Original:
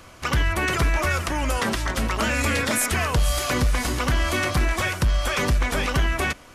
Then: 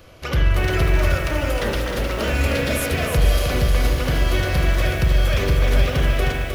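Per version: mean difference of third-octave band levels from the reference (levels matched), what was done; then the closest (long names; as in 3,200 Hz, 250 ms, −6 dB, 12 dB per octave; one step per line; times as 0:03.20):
5.5 dB: octave-band graphic EQ 250/500/1,000/2,000/8,000 Hz −6/+4/−10/−4/−12 dB
spring reverb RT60 1.2 s, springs 43 ms, chirp 35 ms, DRR 3 dB
feedback echo at a low word length 310 ms, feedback 55%, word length 7 bits, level −5 dB
level +2.5 dB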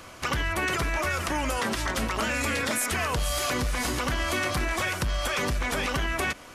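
1.5 dB: low-shelf EQ 130 Hz −7 dB
brickwall limiter −18 dBFS, peak gain reduction 4.5 dB
downward compressor 2.5 to 1, threshold −27 dBFS, peak gain reduction 3.5 dB
level +2 dB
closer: second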